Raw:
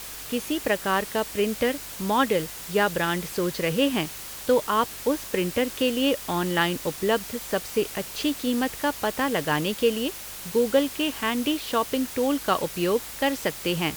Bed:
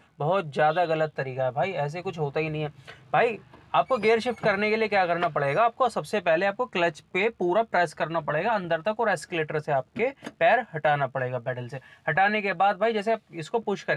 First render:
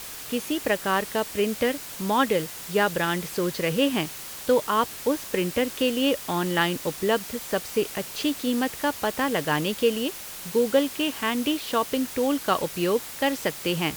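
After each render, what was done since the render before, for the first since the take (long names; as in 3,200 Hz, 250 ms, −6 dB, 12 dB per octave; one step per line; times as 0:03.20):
hum removal 50 Hz, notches 2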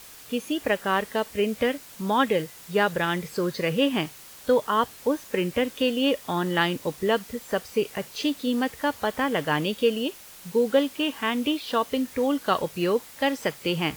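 noise reduction from a noise print 8 dB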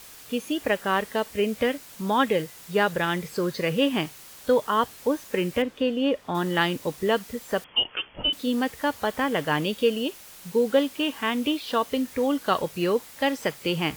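0:05.62–0:06.35: low-pass filter 1,700 Hz 6 dB per octave
0:07.64–0:08.33: voice inversion scrambler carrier 3,300 Hz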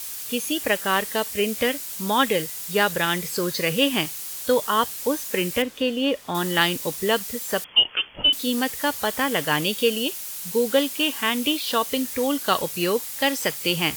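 parametric band 15,000 Hz +14.5 dB 2.3 octaves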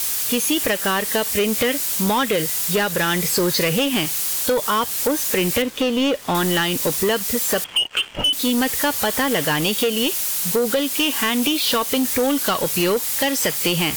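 downward compressor 16 to 1, threshold −23 dBFS, peak gain reduction 12 dB
leveller curve on the samples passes 3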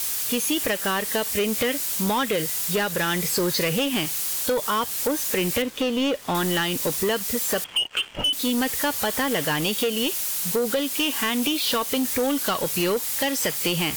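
level −4 dB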